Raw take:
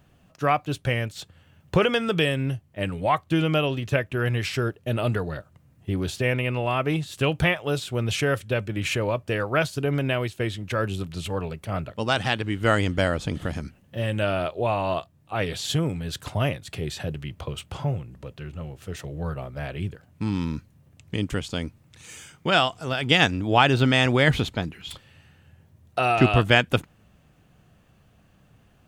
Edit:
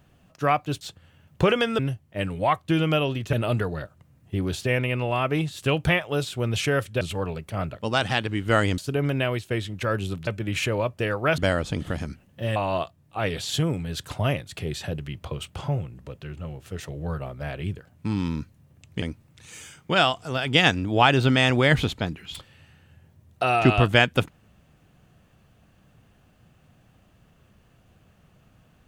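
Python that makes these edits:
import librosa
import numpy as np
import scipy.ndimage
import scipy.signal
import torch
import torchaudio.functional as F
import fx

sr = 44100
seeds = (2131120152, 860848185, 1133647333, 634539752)

y = fx.edit(x, sr, fx.cut(start_s=0.81, length_s=0.33),
    fx.cut(start_s=2.12, length_s=0.29),
    fx.cut(start_s=3.95, length_s=0.93),
    fx.swap(start_s=8.56, length_s=1.11, other_s=11.16, other_length_s=1.77),
    fx.cut(start_s=14.11, length_s=0.61),
    fx.cut(start_s=21.18, length_s=0.4), tone=tone)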